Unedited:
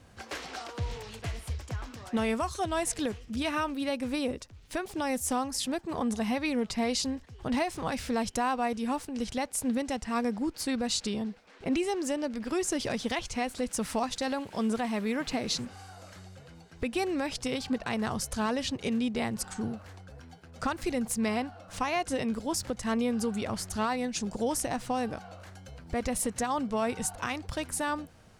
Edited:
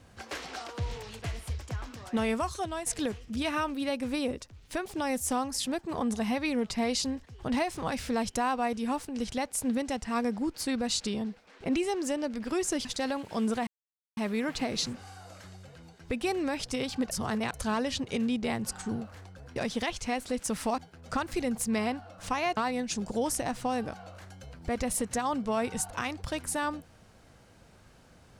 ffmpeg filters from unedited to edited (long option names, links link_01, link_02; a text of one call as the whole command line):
ffmpeg -i in.wav -filter_complex "[0:a]asplit=9[link_01][link_02][link_03][link_04][link_05][link_06][link_07][link_08][link_09];[link_01]atrim=end=2.86,asetpts=PTS-STARTPTS,afade=type=out:start_time=2.49:duration=0.37:silence=0.354813[link_10];[link_02]atrim=start=2.86:end=12.852,asetpts=PTS-STARTPTS,afade=type=in:duration=0.004:curve=hsin:silence=0.354813[link_11];[link_03]atrim=start=14.068:end=14.89,asetpts=PTS-STARTPTS,afade=type=out:start_time=0.818:duration=0.004:curve=hsin,apad=pad_dur=0.5[link_12];[link_04]atrim=start=14.89:end=17.832,asetpts=PTS-STARTPTS,afade=type=in:duration=0.004:curve=hsin[link_13];[link_05]atrim=start=17.828:end=18.262,asetpts=PTS-STARTPTS,areverse[link_14];[link_06]atrim=start=18.258:end=20.282[link_15];[link_07]atrim=start=12.848:end=14.072[link_16];[link_08]atrim=start=20.278:end=22.072[link_17];[link_09]atrim=start=23.818[link_18];[link_10][link_11]concat=n=2:v=0:a=1[link_19];[link_12][link_13]concat=n=2:v=0:a=1[link_20];[link_19][link_20]acrossfade=duration=0.004:curve1=hsin:curve2=hsin[link_21];[link_21][link_14]acrossfade=duration=0.004:curve1=hsin:curve2=hsin[link_22];[link_22][link_15]acrossfade=duration=0.004:curve1=hsin:curve2=hsin[link_23];[link_23][link_16]acrossfade=duration=0.004:curve1=hsin:curve2=hsin[link_24];[link_24][link_17]acrossfade=duration=0.004:curve1=hsin:curve2=hsin[link_25];[link_25][link_18]acrossfade=duration=0.004:curve1=hsin:curve2=hsin" out.wav